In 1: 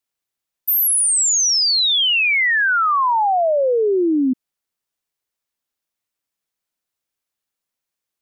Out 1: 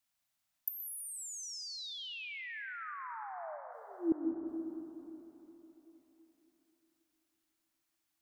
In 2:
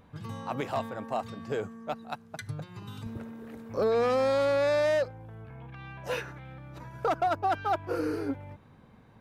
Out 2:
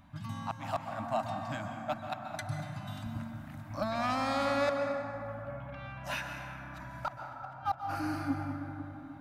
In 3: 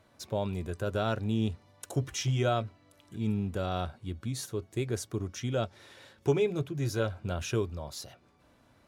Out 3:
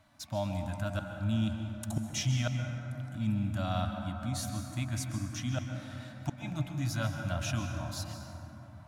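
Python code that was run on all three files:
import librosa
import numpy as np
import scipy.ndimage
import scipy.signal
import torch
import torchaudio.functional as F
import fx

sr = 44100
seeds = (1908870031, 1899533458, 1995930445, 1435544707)

y = scipy.signal.sosfilt(scipy.signal.ellip(3, 1.0, 40, [300.0, 600.0], 'bandstop', fs=sr, output='sos'), x)
y = fx.gate_flip(y, sr, shuts_db=-21.0, range_db=-28)
y = fx.rev_plate(y, sr, seeds[0], rt60_s=3.8, hf_ratio=0.3, predelay_ms=115, drr_db=3.5)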